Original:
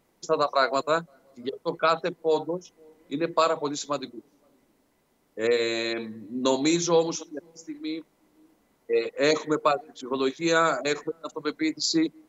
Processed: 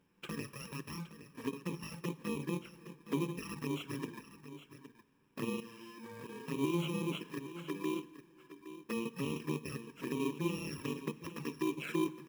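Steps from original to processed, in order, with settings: FFT order left unsorted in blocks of 64 samples; bell 150 Hz +8 dB 0.41 oct; in parallel at +3 dB: compressor 6:1, threshold -31 dBFS, peak gain reduction 14 dB; on the sum: limiter -15.5 dBFS, peak gain reduction 9.5 dB; 5.6–6.48 level quantiser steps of 18 dB; polynomial smoothing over 25 samples; short-mantissa float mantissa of 2-bit; envelope flanger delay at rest 11.2 ms, full sweep at -28 dBFS; low shelf 62 Hz -11 dB; echo 0.816 s -13 dB; on a send at -16 dB: reverb RT60 1.3 s, pre-delay 10 ms; on the sum: gain -5 dB

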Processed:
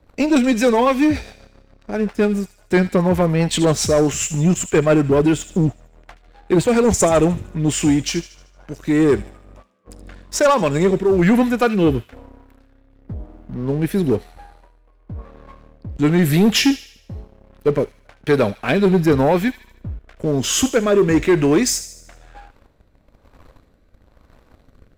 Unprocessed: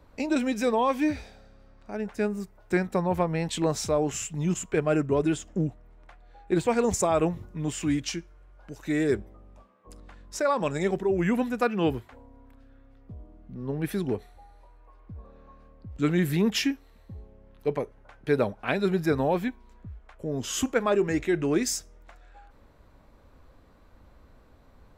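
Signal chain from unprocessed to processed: rotary speaker horn 7.5 Hz, later 1 Hz, at 7.09; sample leveller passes 2; thin delay 76 ms, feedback 49%, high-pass 2400 Hz, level -11.5 dB; gain +6 dB

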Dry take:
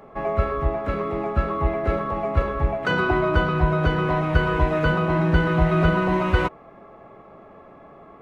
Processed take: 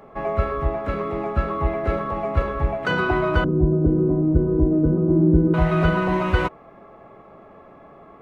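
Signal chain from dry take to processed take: 3.44–5.54 synth low-pass 320 Hz, resonance Q 3.7

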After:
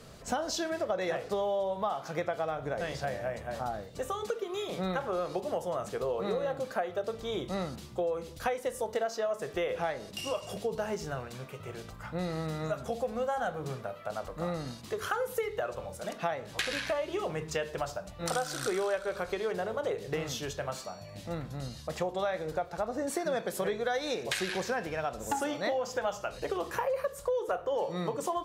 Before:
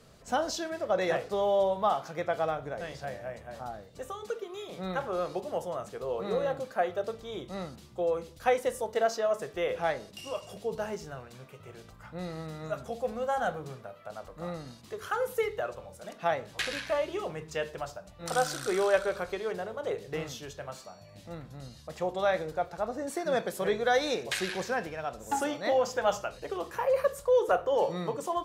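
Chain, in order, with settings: compressor 6:1, threshold -35 dBFS, peak gain reduction 15 dB; gain +6 dB

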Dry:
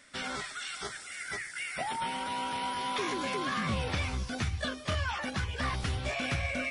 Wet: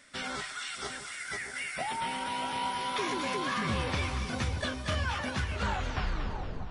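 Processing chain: tape stop at the end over 1.31 s; split-band echo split 980 Hz, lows 0.632 s, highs 0.233 s, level -8 dB

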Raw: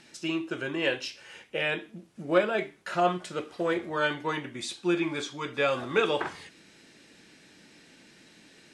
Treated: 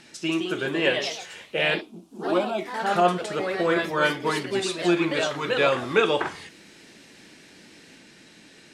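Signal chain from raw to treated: 1.81–2.76 fixed phaser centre 470 Hz, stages 6; echoes that change speed 0.191 s, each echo +2 st, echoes 3, each echo -6 dB; gain +4.5 dB

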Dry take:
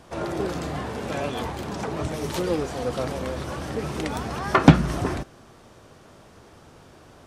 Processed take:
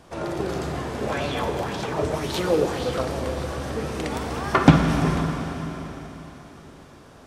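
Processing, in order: Schroeder reverb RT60 4 s, DRR 2.5 dB; 1.01–3.01 LFO bell 1.9 Hz 420–4100 Hz +9 dB; gain -1 dB

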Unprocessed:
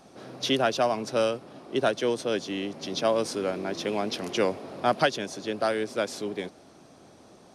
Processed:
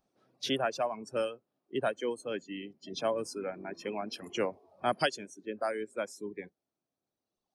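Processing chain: spectral noise reduction 20 dB; 4.53–5.24 high shelf 4200 Hz +9.5 dB; reverb removal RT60 2 s; gain -6 dB

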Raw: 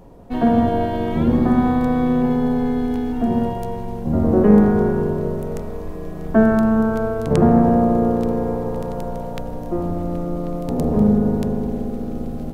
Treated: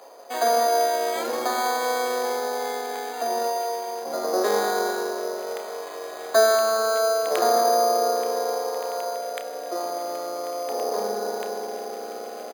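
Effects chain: HPF 530 Hz 24 dB/oct; high shelf 2400 Hz +8 dB; notch 900 Hz, Q 12; 9.15–9.76 bell 930 Hz -9.5 dB 0.44 oct; in parallel at -0.5 dB: compressor 6:1, threshold -37 dBFS, peak gain reduction 19.5 dB; on the sum: companded quantiser 8-bit; doubler 30 ms -12 dB; on a send at -15.5 dB: reverb RT60 0.85 s, pre-delay 3 ms; on the sum: careless resampling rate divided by 8×, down filtered, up hold

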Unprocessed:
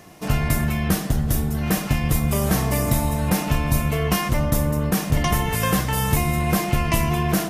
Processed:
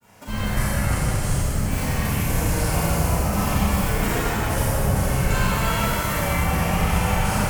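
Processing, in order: bell 260 Hz -11.5 dB 0.88 oct; grains, grains 23/s, pitch spread up and down by 7 st; bell 3700 Hz -7.5 dB 0.32 oct; Schroeder reverb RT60 3.3 s, combs from 30 ms, DRR -9.5 dB; gain -6 dB

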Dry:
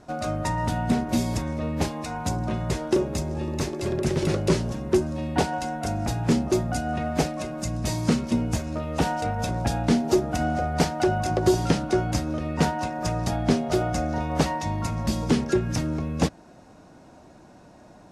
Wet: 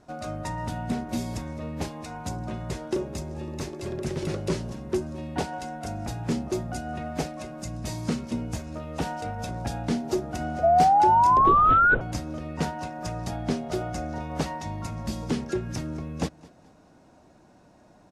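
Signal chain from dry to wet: 11.37–12.01 LPC vocoder at 8 kHz whisper; feedback echo 0.213 s, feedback 37%, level -22 dB; 10.63–11.95 painted sound rise 660–1500 Hz -12 dBFS; gain -6 dB

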